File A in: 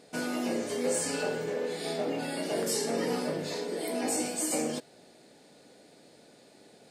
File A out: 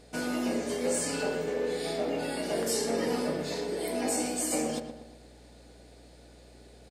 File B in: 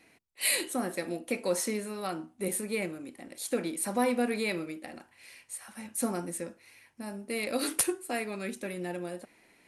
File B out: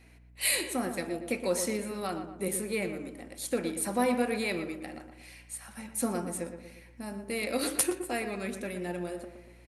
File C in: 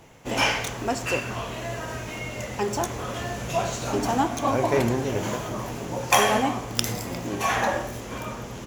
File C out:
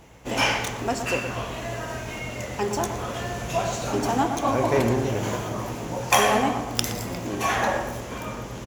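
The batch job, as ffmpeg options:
-filter_complex "[0:a]aeval=exprs='val(0)+0.00141*(sin(2*PI*60*n/s)+sin(2*PI*2*60*n/s)/2+sin(2*PI*3*60*n/s)/3+sin(2*PI*4*60*n/s)/4+sin(2*PI*5*60*n/s)/5)':c=same,asplit=2[a][b];[b]adelay=118,lowpass=f=2k:p=1,volume=-8dB,asplit=2[c][d];[d]adelay=118,lowpass=f=2k:p=1,volume=0.5,asplit=2[e][f];[f]adelay=118,lowpass=f=2k:p=1,volume=0.5,asplit=2[g][h];[h]adelay=118,lowpass=f=2k:p=1,volume=0.5,asplit=2[i][j];[j]adelay=118,lowpass=f=2k:p=1,volume=0.5,asplit=2[k][l];[l]adelay=118,lowpass=f=2k:p=1,volume=0.5[m];[a][c][e][g][i][k][m]amix=inputs=7:normalize=0"

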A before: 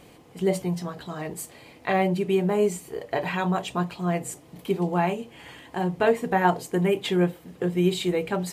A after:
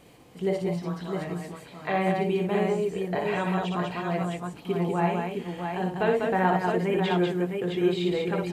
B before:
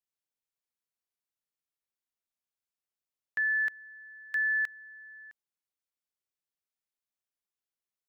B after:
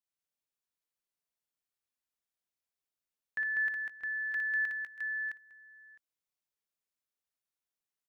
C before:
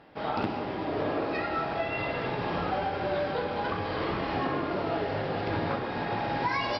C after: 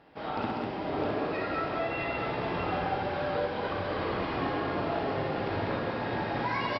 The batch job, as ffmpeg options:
-filter_complex "[0:a]aecho=1:1:59|66|196|213|636|663:0.596|0.106|0.631|0.133|0.133|0.562,acrossover=split=4700[a][b];[b]acompressor=threshold=-54dB:ratio=4:attack=1:release=60[c];[a][c]amix=inputs=2:normalize=0,volume=-4dB"

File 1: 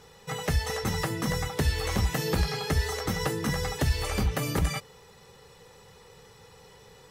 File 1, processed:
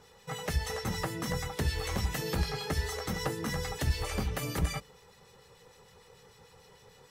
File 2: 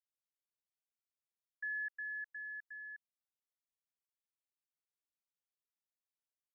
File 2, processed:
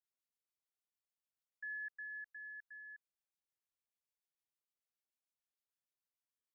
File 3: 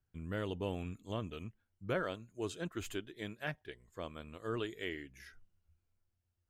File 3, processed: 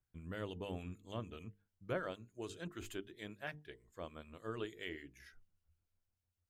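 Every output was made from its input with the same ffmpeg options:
-filter_complex "[0:a]bandreject=f=50:t=h:w=6,bandreject=f=100:t=h:w=6,bandreject=f=150:t=h:w=6,bandreject=f=200:t=h:w=6,bandreject=f=250:t=h:w=6,bandreject=f=300:t=h:w=6,bandreject=f=350:t=h:w=6,bandreject=f=400:t=h:w=6,bandreject=f=450:t=h:w=6,acrossover=split=1600[a][b];[a]aeval=exprs='val(0)*(1-0.5/2+0.5/2*cos(2*PI*6.7*n/s))':c=same[c];[b]aeval=exprs='val(0)*(1-0.5/2-0.5/2*cos(2*PI*6.7*n/s))':c=same[d];[c][d]amix=inputs=2:normalize=0,volume=-2dB"

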